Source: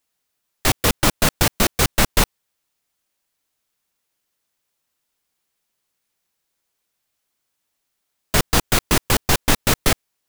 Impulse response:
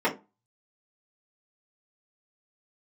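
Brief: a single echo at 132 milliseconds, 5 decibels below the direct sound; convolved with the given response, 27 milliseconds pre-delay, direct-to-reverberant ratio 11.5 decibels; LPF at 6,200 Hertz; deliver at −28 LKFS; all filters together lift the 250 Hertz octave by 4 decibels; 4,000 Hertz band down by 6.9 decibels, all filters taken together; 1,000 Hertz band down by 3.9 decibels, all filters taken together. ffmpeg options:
-filter_complex "[0:a]lowpass=6200,equalizer=frequency=250:width_type=o:gain=5.5,equalizer=frequency=1000:width_type=o:gain=-5,equalizer=frequency=4000:width_type=o:gain=-8,aecho=1:1:132:0.562,asplit=2[link_01][link_02];[1:a]atrim=start_sample=2205,adelay=27[link_03];[link_02][link_03]afir=irnorm=-1:irlink=0,volume=-25.5dB[link_04];[link_01][link_04]amix=inputs=2:normalize=0,volume=-7.5dB"

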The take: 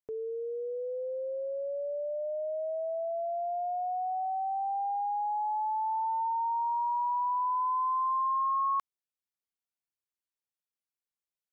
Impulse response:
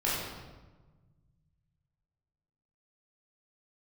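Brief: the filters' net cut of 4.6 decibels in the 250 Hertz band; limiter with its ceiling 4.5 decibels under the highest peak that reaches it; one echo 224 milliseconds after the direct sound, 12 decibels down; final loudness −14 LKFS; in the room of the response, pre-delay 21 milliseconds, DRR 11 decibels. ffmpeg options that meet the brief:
-filter_complex "[0:a]equalizer=frequency=250:width_type=o:gain=-8.5,alimiter=level_in=6dB:limit=-24dB:level=0:latency=1,volume=-6dB,aecho=1:1:224:0.251,asplit=2[link_01][link_02];[1:a]atrim=start_sample=2205,adelay=21[link_03];[link_02][link_03]afir=irnorm=-1:irlink=0,volume=-21dB[link_04];[link_01][link_04]amix=inputs=2:normalize=0,volume=19.5dB"

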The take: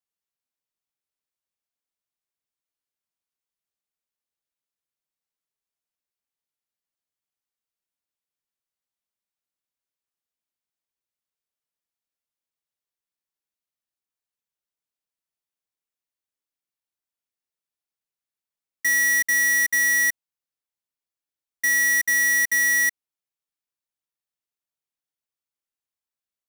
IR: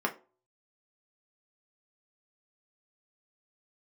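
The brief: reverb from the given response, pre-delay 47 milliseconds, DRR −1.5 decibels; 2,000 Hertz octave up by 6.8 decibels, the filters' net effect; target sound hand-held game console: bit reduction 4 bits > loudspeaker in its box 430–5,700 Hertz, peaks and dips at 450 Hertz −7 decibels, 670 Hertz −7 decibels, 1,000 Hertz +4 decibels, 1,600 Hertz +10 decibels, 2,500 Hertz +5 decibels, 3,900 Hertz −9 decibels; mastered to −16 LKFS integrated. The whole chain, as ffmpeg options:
-filter_complex "[0:a]equalizer=frequency=2000:width_type=o:gain=3,asplit=2[link_01][link_02];[1:a]atrim=start_sample=2205,adelay=47[link_03];[link_02][link_03]afir=irnorm=-1:irlink=0,volume=-7dB[link_04];[link_01][link_04]amix=inputs=2:normalize=0,acrusher=bits=3:mix=0:aa=0.000001,highpass=430,equalizer=frequency=450:width_type=q:width=4:gain=-7,equalizer=frequency=670:width_type=q:width=4:gain=-7,equalizer=frequency=1000:width_type=q:width=4:gain=4,equalizer=frequency=1600:width_type=q:width=4:gain=10,equalizer=frequency=2500:width_type=q:width=4:gain=5,equalizer=frequency=3900:width_type=q:width=4:gain=-9,lowpass=frequency=5700:width=0.5412,lowpass=frequency=5700:width=1.3066,volume=-4dB"

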